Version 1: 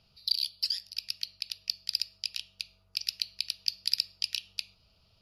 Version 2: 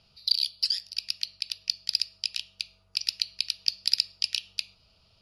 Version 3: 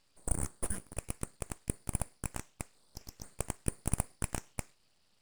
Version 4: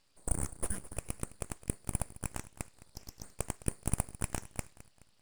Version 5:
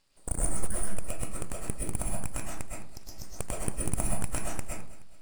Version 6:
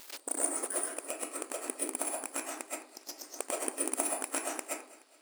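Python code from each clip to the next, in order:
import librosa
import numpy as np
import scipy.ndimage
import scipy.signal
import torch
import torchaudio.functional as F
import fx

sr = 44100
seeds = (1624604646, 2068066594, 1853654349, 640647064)

y1 = scipy.signal.sosfilt(scipy.signal.butter(6, 11000.0, 'lowpass', fs=sr, output='sos'), x)
y1 = fx.low_shelf(y1, sr, hz=320.0, db=-3.0)
y1 = y1 * 10.0 ** (4.0 / 20.0)
y2 = fx.spec_repair(y1, sr, seeds[0], start_s=2.75, length_s=0.46, low_hz=3400.0, high_hz=7300.0, source='before')
y2 = np.abs(y2)
y2 = y2 * 10.0 ** (-6.5 / 20.0)
y3 = fx.echo_feedback(y2, sr, ms=212, feedback_pct=44, wet_db=-17.5)
y4 = fx.rev_freeverb(y3, sr, rt60_s=0.48, hf_ratio=0.55, predelay_ms=85, drr_db=-3.5)
y5 = y4 + 0.5 * 10.0 ** (-36.0 / 20.0) * np.sign(y4)
y5 = fx.brickwall_highpass(y5, sr, low_hz=250.0)
y5 = y5 * 10.0 ** (1.5 / 20.0)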